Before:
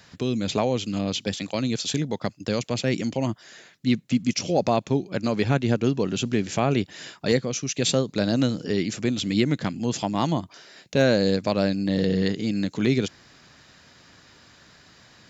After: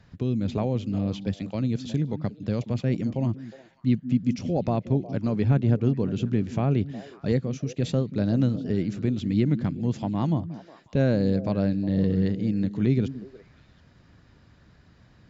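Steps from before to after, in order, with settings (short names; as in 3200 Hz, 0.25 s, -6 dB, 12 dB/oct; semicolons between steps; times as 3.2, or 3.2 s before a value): RIAA curve playback; delay with a stepping band-pass 0.181 s, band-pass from 210 Hz, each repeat 1.4 oct, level -10 dB; gain -8 dB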